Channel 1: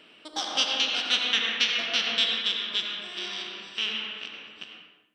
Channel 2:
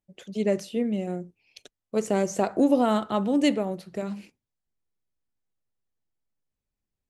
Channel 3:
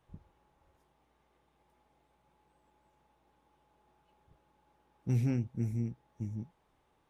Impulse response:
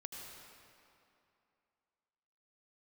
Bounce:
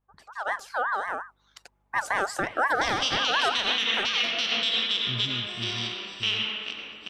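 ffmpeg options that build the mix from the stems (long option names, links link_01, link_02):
-filter_complex "[0:a]equalizer=frequency=1600:width_type=o:width=0.34:gain=-4.5,adelay=2450,volume=-4.5dB[link_01];[1:a]aeval=exprs='val(0)*sin(2*PI*1200*n/s+1200*0.2/5.6*sin(2*PI*5.6*n/s))':channel_layout=same,volume=-5.5dB[link_02];[2:a]aeval=exprs='val(0)+0.000562*(sin(2*PI*50*n/s)+sin(2*PI*2*50*n/s)/2+sin(2*PI*3*50*n/s)/3+sin(2*PI*4*50*n/s)/4+sin(2*PI*5*50*n/s)/5)':channel_layout=same,lowpass=2900,volume=-13.5dB[link_03];[link_01][link_02][link_03]amix=inputs=3:normalize=0,dynaudnorm=framelen=440:gausssize=3:maxgain=8dB,alimiter=limit=-14dB:level=0:latency=1:release=84"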